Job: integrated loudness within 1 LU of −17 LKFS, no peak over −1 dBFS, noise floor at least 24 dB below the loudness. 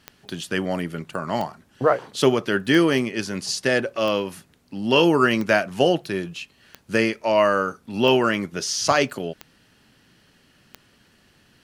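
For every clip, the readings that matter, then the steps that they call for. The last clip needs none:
number of clicks 9; integrated loudness −22.0 LKFS; sample peak −2.5 dBFS; target loudness −17.0 LKFS
→ click removal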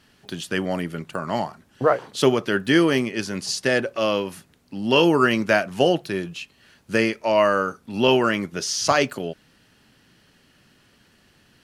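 number of clicks 0; integrated loudness −22.0 LKFS; sample peak −2.5 dBFS; target loudness −17.0 LKFS
→ level +5 dB
brickwall limiter −1 dBFS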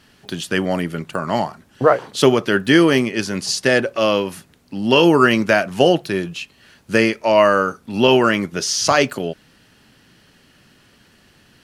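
integrated loudness −17.0 LKFS; sample peak −1.0 dBFS; background noise floor −54 dBFS

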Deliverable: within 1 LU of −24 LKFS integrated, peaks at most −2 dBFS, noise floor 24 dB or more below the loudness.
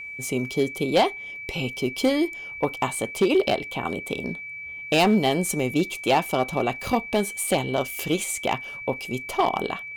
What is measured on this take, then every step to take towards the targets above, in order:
share of clipped samples 0.7%; peaks flattened at −13.0 dBFS; interfering tone 2,300 Hz; level of the tone −34 dBFS; integrated loudness −25.0 LKFS; sample peak −13.0 dBFS; target loudness −24.0 LKFS
→ clipped peaks rebuilt −13 dBFS
notch filter 2,300 Hz, Q 30
level +1 dB

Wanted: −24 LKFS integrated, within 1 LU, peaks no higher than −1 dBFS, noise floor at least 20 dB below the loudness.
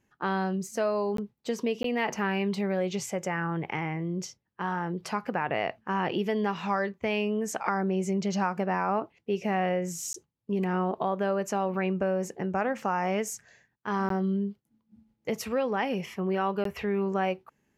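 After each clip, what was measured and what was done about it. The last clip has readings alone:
number of dropouts 5; longest dropout 13 ms; integrated loudness −30.0 LKFS; sample peak −11.0 dBFS; target loudness −24.0 LKFS
→ repair the gap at 0:01.17/0:01.83/0:10.13/0:14.09/0:16.64, 13 ms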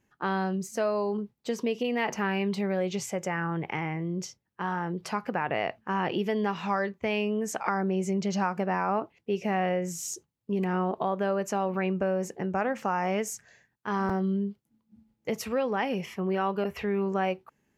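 number of dropouts 0; integrated loudness −30.0 LKFS; sample peak −11.0 dBFS; target loudness −24.0 LKFS
→ level +6 dB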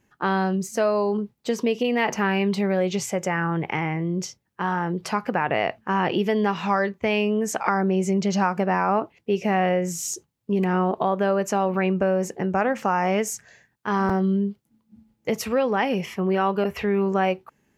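integrated loudness −24.0 LKFS; sample peak −5.0 dBFS; background noise floor −71 dBFS

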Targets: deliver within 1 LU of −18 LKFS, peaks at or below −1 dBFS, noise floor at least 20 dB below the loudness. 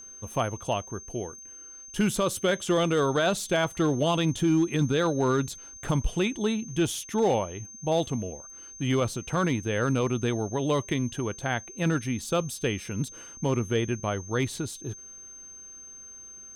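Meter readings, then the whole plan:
share of clipped samples 0.5%; peaks flattened at −16.5 dBFS; interfering tone 6,300 Hz; level of the tone −43 dBFS; integrated loudness −27.5 LKFS; sample peak −16.5 dBFS; target loudness −18.0 LKFS
→ clipped peaks rebuilt −16.5 dBFS
notch filter 6,300 Hz, Q 30
level +9.5 dB

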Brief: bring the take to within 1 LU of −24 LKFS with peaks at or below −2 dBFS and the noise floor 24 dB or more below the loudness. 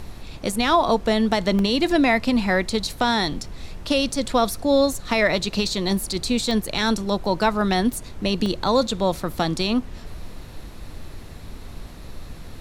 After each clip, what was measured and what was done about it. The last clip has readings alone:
number of dropouts 3; longest dropout 1.2 ms; background noise floor −39 dBFS; target noise floor −46 dBFS; integrated loudness −21.5 LKFS; sample peak −7.5 dBFS; target loudness −24.0 LKFS
→ repair the gap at 0:01.59/0:06.51/0:08.46, 1.2 ms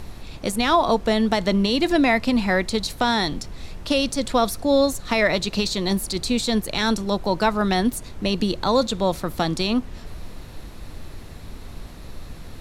number of dropouts 0; background noise floor −39 dBFS; target noise floor −46 dBFS
→ noise reduction from a noise print 7 dB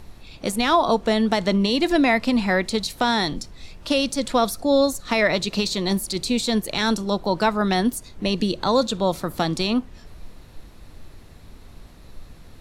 background noise floor −45 dBFS; target noise floor −46 dBFS
→ noise reduction from a noise print 6 dB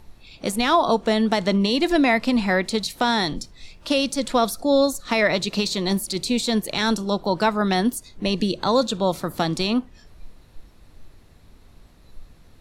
background noise floor −51 dBFS; integrated loudness −22.0 LKFS; sample peak −8.0 dBFS; target loudness −24.0 LKFS
→ level −2 dB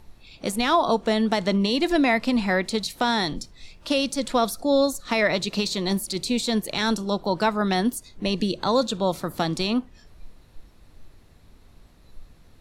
integrated loudness −24.0 LKFS; sample peak −10.0 dBFS; background noise floor −53 dBFS

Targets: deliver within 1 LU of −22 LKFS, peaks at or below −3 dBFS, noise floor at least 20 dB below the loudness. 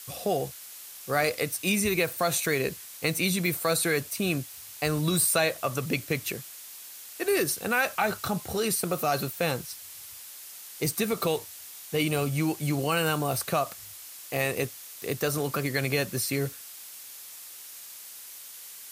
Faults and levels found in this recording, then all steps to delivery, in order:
background noise floor −45 dBFS; target noise floor −48 dBFS; integrated loudness −28.0 LKFS; sample peak −11.0 dBFS; target loudness −22.0 LKFS
→ broadband denoise 6 dB, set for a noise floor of −45 dBFS
level +6 dB

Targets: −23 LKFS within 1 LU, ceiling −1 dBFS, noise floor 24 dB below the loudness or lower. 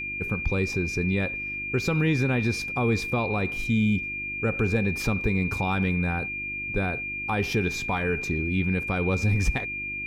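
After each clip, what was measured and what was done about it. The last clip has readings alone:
mains hum 50 Hz; hum harmonics up to 350 Hz; level of the hum −44 dBFS; interfering tone 2,400 Hz; level of the tone −30 dBFS; integrated loudness −26.0 LKFS; sample peak −12.5 dBFS; target loudness −23.0 LKFS
→ hum removal 50 Hz, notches 7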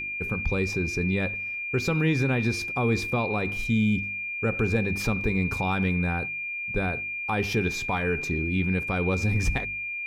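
mains hum none found; interfering tone 2,400 Hz; level of the tone −30 dBFS
→ notch filter 2,400 Hz, Q 30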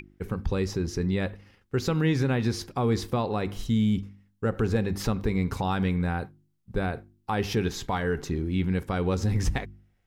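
interfering tone none found; integrated loudness −28.0 LKFS; sample peak −14.0 dBFS; target loudness −23.0 LKFS
→ level +5 dB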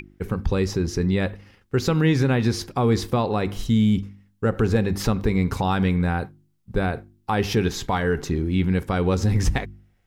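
integrated loudness −23.0 LKFS; sample peak −9.0 dBFS; background noise floor −64 dBFS

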